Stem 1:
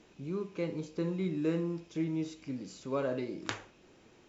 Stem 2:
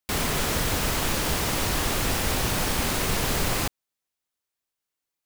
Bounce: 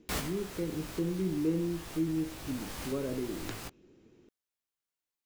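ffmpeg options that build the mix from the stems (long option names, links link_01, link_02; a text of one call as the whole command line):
ffmpeg -i stem1.wav -i stem2.wav -filter_complex "[0:a]lowshelf=frequency=510:width_type=q:width=1.5:gain=9,volume=-9dB,asplit=2[link_01][link_02];[1:a]flanger=delay=16:depth=5.8:speed=0.5,volume=-3.5dB[link_03];[link_02]apad=whole_len=231658[link_04];[link_03][link_04]sidechaincompress=threshold=-45dB:ratio=5:attack=7.9:release=855[link_05];[link_01][link_05]amix=inputs=2:normalize=0" out.wav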